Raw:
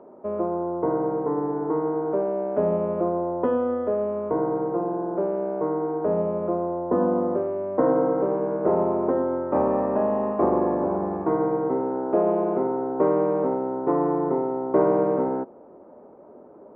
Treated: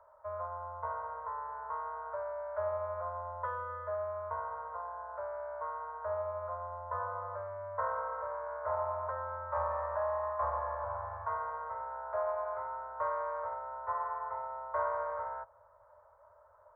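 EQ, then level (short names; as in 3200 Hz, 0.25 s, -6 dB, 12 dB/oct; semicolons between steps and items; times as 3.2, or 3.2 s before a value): Chebyshev band-stop 100–650 Hz, order 4; fixed phaser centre 740 Hz, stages 6; notch 1200 Hz, Q 21; 0.0 dB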